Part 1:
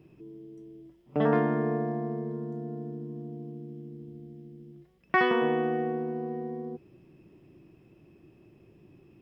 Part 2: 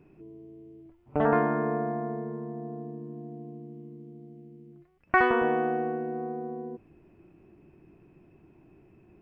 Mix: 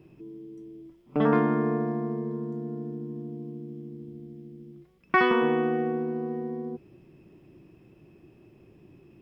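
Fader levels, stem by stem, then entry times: +2.0, −9.0 decibels; 0.00, 0.00 seconds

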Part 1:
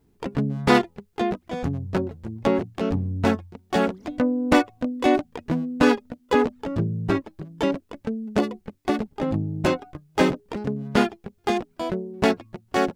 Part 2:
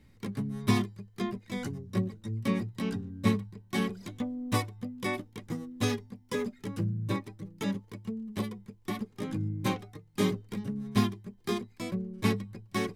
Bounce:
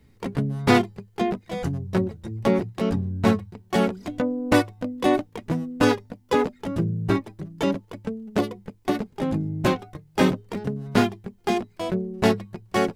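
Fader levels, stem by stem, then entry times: −1.5, +1.0 decibels; 0.00, 0.00 seconds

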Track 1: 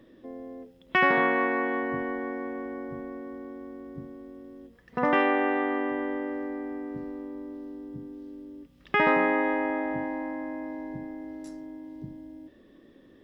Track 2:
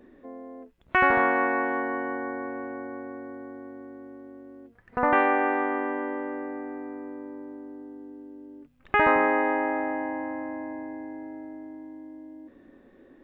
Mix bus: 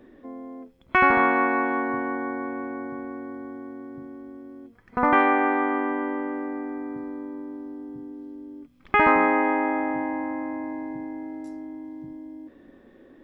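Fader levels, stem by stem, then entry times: −6.5, +2.0 decibels; 0.00, 0.00 seconds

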